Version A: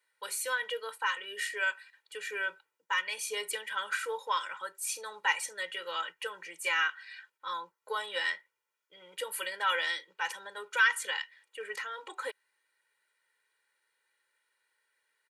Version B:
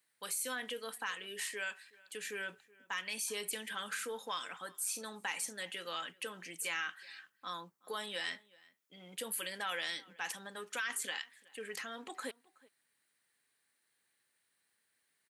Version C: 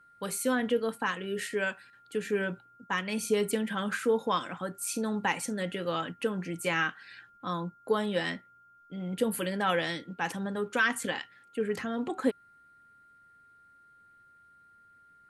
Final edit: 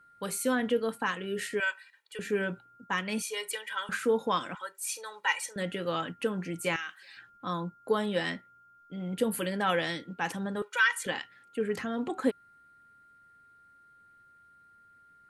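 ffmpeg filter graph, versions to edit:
-filter_complex "[0:a]asplit=4[s0][s1][s2][s3];[2:a]asplit=6[s4][s5][s6][s7][s8][s9];[s4]atrim=end=1.602[s10];[s0]atrim=start=1.598:end=2.192[s11];[s5]atrim=start=2.188:end=3.222[s12];[s1]atrim=start=3.218:end=3.892[s13];[s6]atrim=start=3.888:end=4.552[s14];[s2]atrim=start=4.548:end=5.562[s15];[s7]atrim=start=5.558:end=6.762[s16];[1:a]atrim=start=6.758:end=7.172[s17];[s8]atrim=start=7.168:end=10.622[s18];[s3]atrim=start=10.618:end=11.062[s19];[s9]atrim=start=11.058[s20];[s10][s11]acrossfade=d=0.004:c1=hsin:c2=hsin[s21];[s21][s12]acrossfade=d=0.004:c1=hsin:c2=hsin[s22];[s22][s13]acrossfade=d=0.004:c1=hsin:c2=hsin[s23];[s23][s14]acrossfade=d=0.004:c1=hsin:c2=hsin[s24];[s24][s15]acrossfade=d=0.004:c1=hsin:c2=hsin[s25];[s25][s16]acrossfade=d=0.004:c1=hsin:c2=hsin[s26];[s26][s17]acrossfade=d=0.004:c1=hsin:c2=hsin[s27];[s27][s18]acrossfade=d=0.004:c1=hsin:c2=hsin[s28];[s28][s19]acrossfade=d=0.004:c1=hsin:c2=hsin[s29];[s29][s20]acrossfade=d=0.004:c1=hsin:c2=hsin"

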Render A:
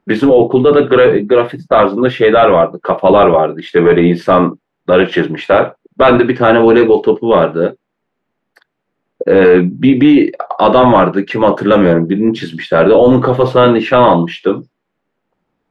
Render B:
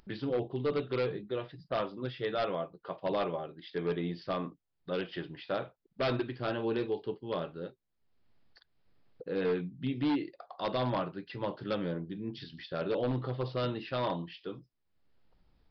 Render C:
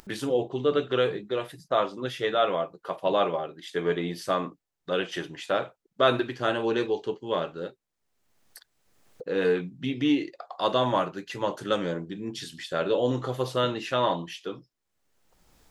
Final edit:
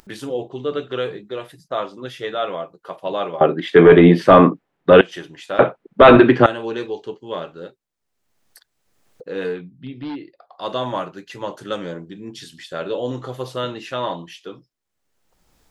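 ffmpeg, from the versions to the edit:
-filter_complex "[0:a]asplit=2[s0][s1];[2:a]asplit=4[s2][s3][s4][s5];[s2]atrim=end=3.412[s6];[s0]atrim=start=3.408:end=5.012[s7];[s3]atrim=start=5.008:end=5.592[s8];[s1]atrim=start=5.588:end=6.462[s9];[s4]atrim=start=6.458:end=9.66[s10];[1:a]atrim=start=9.42:end=10.73[s11];[s5]atrim=start=10.49[s12];[s6][s7]acrossfade=d=0.004:c1=hsin:c2=hsin[s13];[s13][s8]acrossfade=d=0.004:c1=hsin:c2=hsin[s14];[s14][s9]acrossfade=d=0.004:c1=hsin:c2=hsin[s15];[s15][s10]acrossfade=d=0.004:c1=hsin:c2=hsin[s16];[s16][s11]acrossfade=d=0.24:c1=tri:c2=tri[s17];[s17][s12]acrossfade=d=0.24:c1=tri:c2=tri"

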